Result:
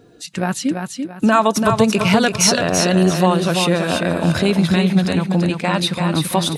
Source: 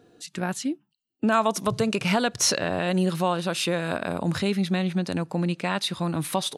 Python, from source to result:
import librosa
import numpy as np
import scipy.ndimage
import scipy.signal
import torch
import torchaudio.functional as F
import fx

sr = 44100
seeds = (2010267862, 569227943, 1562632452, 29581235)

y = fx.spec_quant(x, sr, step_db=15)
y = fx.low_shelf(y, sr, hz=84.0, db=7.5)
y = fx.echo_feedback(y, sr, ms=337, feedback_pct=32, wet_db=-5.5)
y = F.gain(torch.from_numpy(y), 7.5).numpy()